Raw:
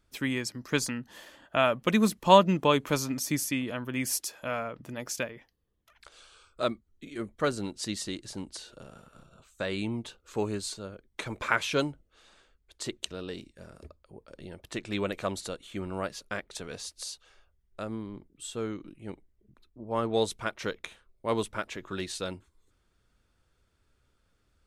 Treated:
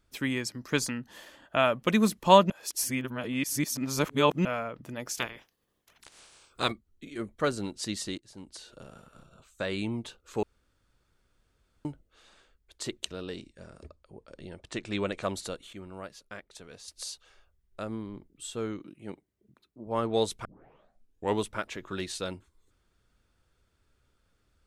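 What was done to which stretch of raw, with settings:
2.50–4.45 s: reverse
5.16–6.71 s: spectral peaks clipped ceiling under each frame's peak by 20 dB
8.18–8.82 s: fade in, from -20 dB
10.43–11.85 s: room tone
13.35–15.23 s: steep low-pass 9.6 kHz 48 dB/octave
15.73–16.88 s: gain -8.5 dB
18.80–19.87 s: high-pass 120 Hz
20.45 s: tape start 0.96 s

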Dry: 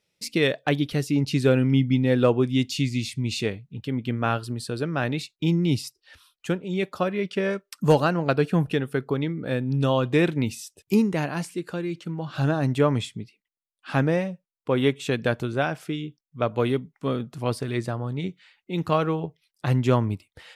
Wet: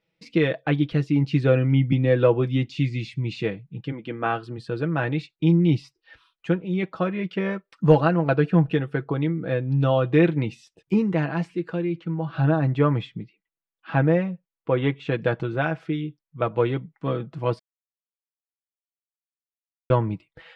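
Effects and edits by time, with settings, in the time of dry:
1.92–2.67 s: three bands compressed up and down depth 70%
3.91–4.57 s: high-pass 290 Hz -> 130 Hz
11.89–15.18 s: distance through air 82 m
17.59–19.90 s: mute
whole clip: de-esser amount 70%; low-pass 2.6 kHz 12 dB/octave; comb 6.1 ms, depth 62%

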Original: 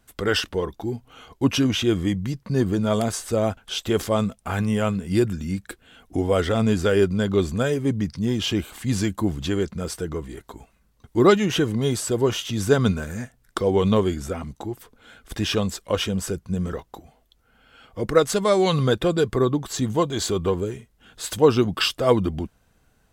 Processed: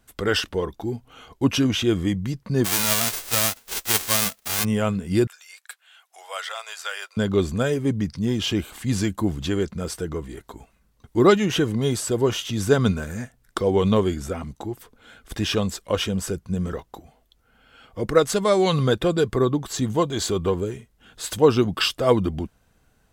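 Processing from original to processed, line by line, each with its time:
2.64–4.63 s: formants flattened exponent 0.1
5.27–7.17 s: Bessel high-pass 1.2 kHz, order 8

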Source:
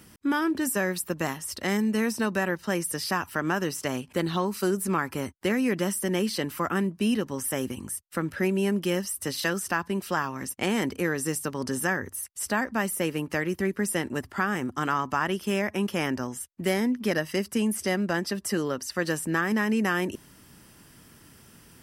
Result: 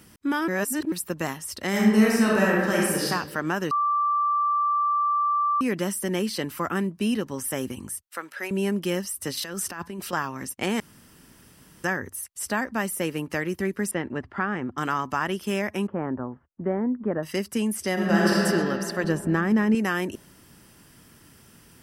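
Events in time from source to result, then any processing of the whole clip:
0.48–0.92 s: reverse
1.69–3.05 s: reverb throw, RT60 1.2 s, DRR -5 dB
3.71–5.61 s: bleep 1.17 kHz -20 dBFS
8.07–8.51 s: high-pass 680 Hz
9.37–10.13 s: compressor with a negative ratio -33 dBFS
10.80–11.84 s: room tone
13.91–14.78 s: low-pass 2.4 kHz
15.87–17.23 s: low-pass 1.3 kHz 24 dB/octave
17.93–18.41 s: reverb throw, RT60 2.9 s, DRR -7 dB
19.04–19.75 s: tilt EQ -2.5 dB/octave

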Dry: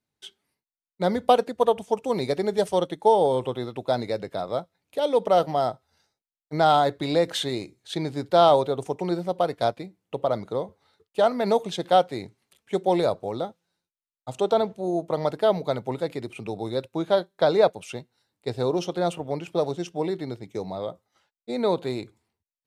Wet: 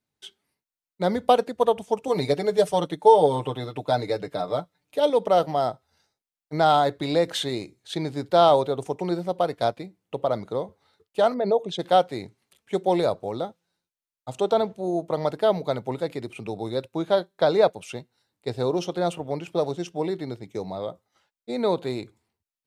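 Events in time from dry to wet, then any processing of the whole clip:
2.07–5.10 s: comb 6.7 ms, depth 70%
11.34–11.79 s: resonances exaggerated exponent 1.5

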